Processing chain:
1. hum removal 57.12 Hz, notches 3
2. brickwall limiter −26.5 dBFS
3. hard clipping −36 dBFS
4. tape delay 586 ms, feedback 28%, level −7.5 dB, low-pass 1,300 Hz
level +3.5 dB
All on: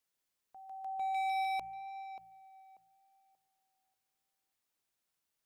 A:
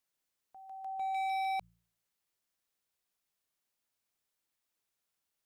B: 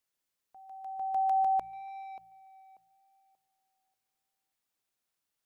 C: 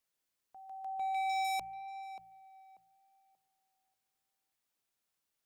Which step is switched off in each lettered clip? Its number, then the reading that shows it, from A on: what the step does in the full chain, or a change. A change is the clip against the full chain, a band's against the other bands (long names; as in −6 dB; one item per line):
4, echo-to-direct ratio −41.0 dB to none audible
3, distortion level −8 dB
2, average gain reduction 2.0 dB